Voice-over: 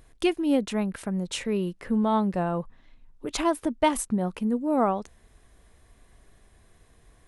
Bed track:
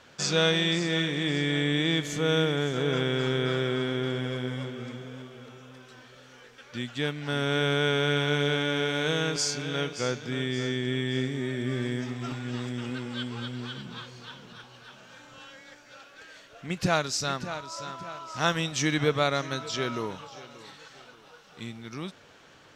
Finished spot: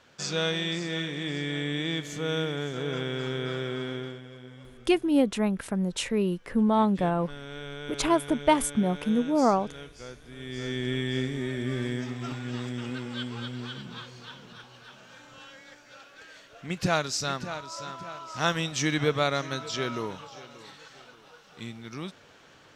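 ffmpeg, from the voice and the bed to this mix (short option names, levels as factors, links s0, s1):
-filter_complex "[0:a]adelay=4650,volume=1.12[s0];[1:a]volume=2.82,afade=t=out:st=3.94:d=0.27:silence=0.334965,afade=t=in:st=10.36:d=0.48:silence=0.211349[s1];[s0][s1]amix=inputs=2:normalize=0"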